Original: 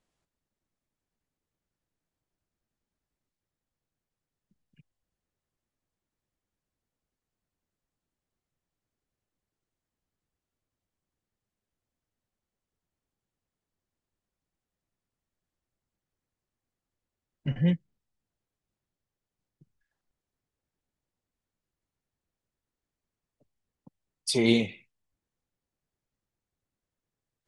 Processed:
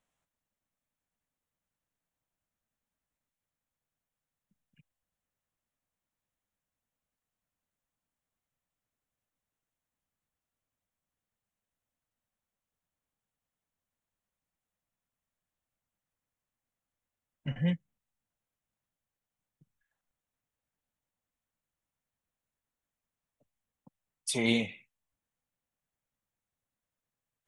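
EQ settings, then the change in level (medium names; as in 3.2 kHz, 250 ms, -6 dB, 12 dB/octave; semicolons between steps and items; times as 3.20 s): bass shelf 220 Hz -7 dB; peaking EQ 370 Hz -9 dB 0.54 oct; peaking EQ 4.7 kHz -11.5 dB 0.4 oct; 0.0 dB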